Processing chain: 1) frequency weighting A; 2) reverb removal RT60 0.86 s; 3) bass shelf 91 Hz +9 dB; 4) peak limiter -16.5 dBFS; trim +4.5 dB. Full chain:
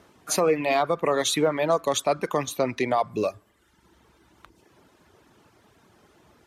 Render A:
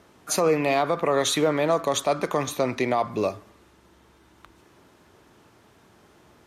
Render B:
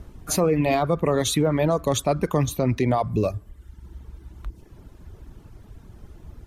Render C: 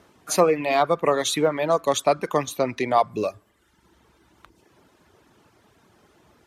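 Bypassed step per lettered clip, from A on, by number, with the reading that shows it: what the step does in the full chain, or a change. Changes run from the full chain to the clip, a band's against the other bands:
2, 125 Hz band +2.0 dB; 1, 125 Hz band +13.5 dB; 4, crest factor change +5.0 dB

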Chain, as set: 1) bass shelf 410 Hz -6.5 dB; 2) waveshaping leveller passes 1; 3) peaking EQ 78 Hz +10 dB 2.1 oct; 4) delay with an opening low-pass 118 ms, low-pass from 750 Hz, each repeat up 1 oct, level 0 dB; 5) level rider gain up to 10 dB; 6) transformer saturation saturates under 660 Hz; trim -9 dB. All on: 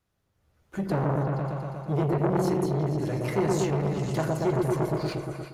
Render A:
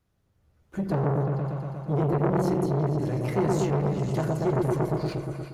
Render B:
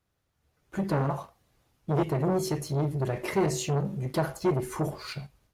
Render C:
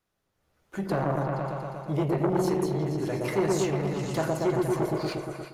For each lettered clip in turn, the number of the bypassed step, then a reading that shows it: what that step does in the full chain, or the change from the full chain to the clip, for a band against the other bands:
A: 1, 4 kHz band -3.5 dB; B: 4, momentary loudness spread change +4 LU; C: 3, 125 Hz band -4.0 dB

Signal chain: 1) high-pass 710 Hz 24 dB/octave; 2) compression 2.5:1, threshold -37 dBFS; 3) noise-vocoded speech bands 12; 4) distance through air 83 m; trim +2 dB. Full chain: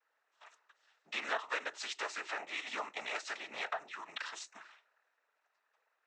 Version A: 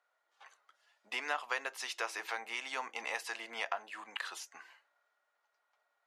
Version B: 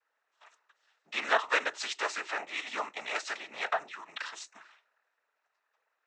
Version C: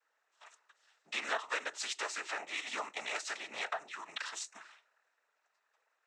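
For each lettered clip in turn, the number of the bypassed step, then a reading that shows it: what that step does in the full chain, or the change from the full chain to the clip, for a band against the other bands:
3, 8 kHz band +2.0 dB; 2, mean gain reduction 4.0 dB; 4, 8 kHz band +6.0 dB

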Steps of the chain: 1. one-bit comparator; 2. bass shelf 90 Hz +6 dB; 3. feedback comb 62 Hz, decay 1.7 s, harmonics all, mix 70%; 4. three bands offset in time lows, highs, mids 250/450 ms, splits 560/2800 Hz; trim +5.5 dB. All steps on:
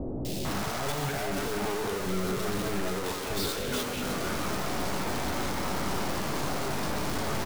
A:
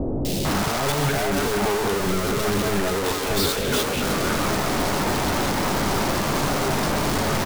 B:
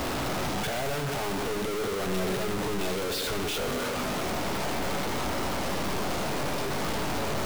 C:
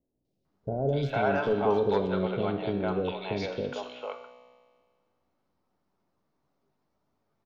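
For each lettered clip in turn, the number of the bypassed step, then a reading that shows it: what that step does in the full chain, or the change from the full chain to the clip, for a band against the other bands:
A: 3, loudness change +9.0 LU; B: 4, echo-to-direct 10.5 dB to none; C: 1, crest factor change +5.0 dB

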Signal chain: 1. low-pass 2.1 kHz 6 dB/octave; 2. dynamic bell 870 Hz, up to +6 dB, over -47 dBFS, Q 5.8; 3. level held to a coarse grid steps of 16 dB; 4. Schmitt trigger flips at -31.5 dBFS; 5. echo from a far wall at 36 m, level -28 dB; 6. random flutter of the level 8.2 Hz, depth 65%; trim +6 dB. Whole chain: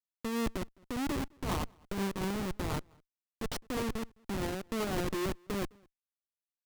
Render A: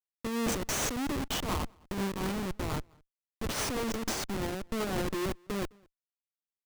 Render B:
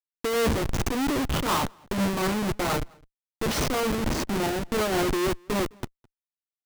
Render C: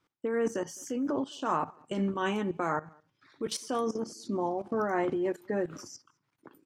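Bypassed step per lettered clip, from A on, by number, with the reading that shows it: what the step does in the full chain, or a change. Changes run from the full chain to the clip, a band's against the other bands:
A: 1, 8 kHz band +7.0 dB; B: 3, 250 Hz band -3.0 dB; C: 4, crest factor change +7.0 dB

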